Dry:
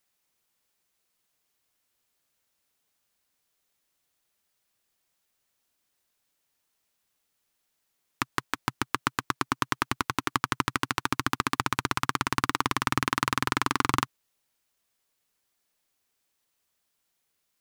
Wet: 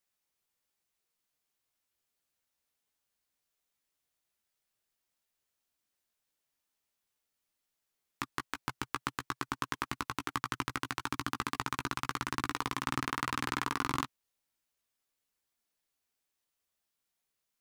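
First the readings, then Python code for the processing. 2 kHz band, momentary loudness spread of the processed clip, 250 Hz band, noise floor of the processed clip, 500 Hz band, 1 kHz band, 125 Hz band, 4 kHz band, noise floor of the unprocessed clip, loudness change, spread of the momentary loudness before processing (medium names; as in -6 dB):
-8.0 dB, 5 LU, -7.5 dB, -85 dBFS, -8.0 dB, -8.0 dB, -7.5 dB, -8.0 dB, -78 dBFS, -7.5 dB, 5 LU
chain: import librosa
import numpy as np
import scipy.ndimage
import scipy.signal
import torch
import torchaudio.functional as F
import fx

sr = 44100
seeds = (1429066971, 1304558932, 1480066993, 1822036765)

y = fx.chorus_voices(x, sr, voices=6, hz=0.31, base_ms=16, depth_ms=2.4, mix_pct=30)
y = F.gain(torch.from_numpy(y), -5.5).numpy()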